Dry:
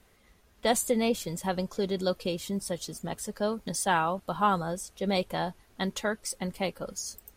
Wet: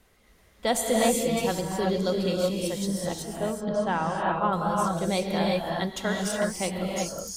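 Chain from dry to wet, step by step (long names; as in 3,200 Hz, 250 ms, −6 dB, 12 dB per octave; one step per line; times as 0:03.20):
0:03.22–0:04.53: head-to-tape spacing loss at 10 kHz 25 dB
reverb whose tail is shaped and stops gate 400 ms rising, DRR −1.5 dB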